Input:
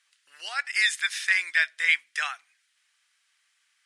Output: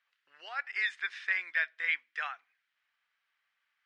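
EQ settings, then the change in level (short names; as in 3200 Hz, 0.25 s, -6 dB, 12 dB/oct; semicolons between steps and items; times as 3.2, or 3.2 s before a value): tape spacing loss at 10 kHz 39 dB; 0.0 dB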